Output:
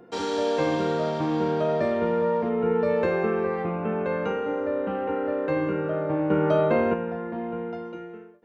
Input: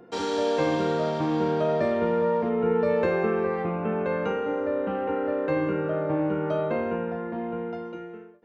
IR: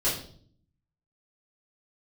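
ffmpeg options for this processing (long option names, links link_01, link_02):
-filter_complex "[0:a]asettb=1/sr,asplit=3[link_01][link_02][link_03];[link_01]atrim=end=6.304[link_04];[link_02]atrim=start=6.3:end=6.94,asetpts=PTS-STARTPTS,afade=type=in:duration=0.004:curve=qsin,afade=type=out:start_time=0.636:duration=0.004:curve=qsin,acontrast=38[link_05];[link_03]atrim=start=6.936[link_06];[link_04][link_05]acrossfade=duration=0.004:curve1=hsin:curve2=qsin[link_07];[link_07][link_06]acrossfade=duration=0.004:curve1=qsin:curve2=hsin"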